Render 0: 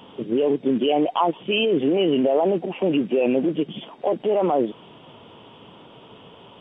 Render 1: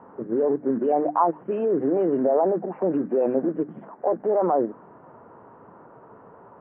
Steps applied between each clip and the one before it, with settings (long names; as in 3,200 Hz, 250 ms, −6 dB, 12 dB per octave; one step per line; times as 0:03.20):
Butterworth low-pass 1,700 Hz 48 dB per octave
low-shelf EQ 470 Hz −6.5 dB
mains-hum notches 50/100/150/200/250/300 Hz
level +2 dB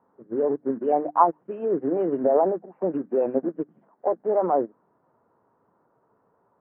expander for the loud parts 2.5 to 1, over −32 dBFS
level +4.5 dB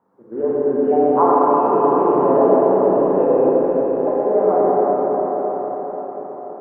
echo through a band-pass that steps 351 ms, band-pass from 590 Hz, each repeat 0.7 octaves, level −11.5 dB
convolution reverb RT60 5.7 s, pre-delay 31 ms, DRR −9.5 dB
level −1 dB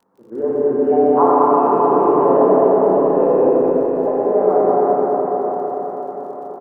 surface crackle 53 per second −46 dBFS
single-tap delay 206 ms −5.5 dB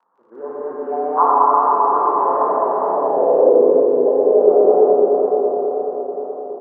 band-pass filter sweep 1,100 Hz → 460 Hz, 0:02.83–0:03.66
echo with a time of its own for lows and highs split 620 Hz, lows 255 ms, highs 338 ms, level −14.5 dB
tape wow and flutter 28 cents
level +4.5 dB